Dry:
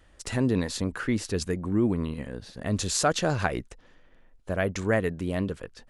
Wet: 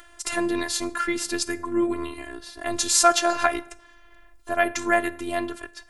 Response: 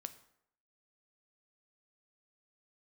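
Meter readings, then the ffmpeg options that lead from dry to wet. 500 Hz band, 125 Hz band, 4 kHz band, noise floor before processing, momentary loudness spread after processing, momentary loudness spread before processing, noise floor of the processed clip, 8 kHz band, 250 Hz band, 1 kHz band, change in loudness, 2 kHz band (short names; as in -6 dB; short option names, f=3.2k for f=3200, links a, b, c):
+2.5 dB, -17.0 dB, +6.5 dB, -58 dBFS, 15 LU, 9 LU, -52 dBFS, +8.5 dB, -0.5 dB, +9.0 dB, +4.0 dB, +6.5 dB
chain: -filter_complex "[0:a]asplit=2[a][b];[1:a]atrim=start_sample=2205,asetrate=48510,aresample=44100[c];[b][c]afir=irnorm=-1:irlink=0,volume=9.5dB[d];[a][d]amix=inputs=2:normalize=0,crystalizer=i=2.5:c=0,afftfilt=real='hypot(re,im)*cos(PI*b)':imag='0':win_size=512:overlap=0.75,equalizer=f=1.2k:t=o:w=2.4:g=10,acompressor=mode=upward:threshold=-35dB:ratio=2.5,volume=-7.5dB"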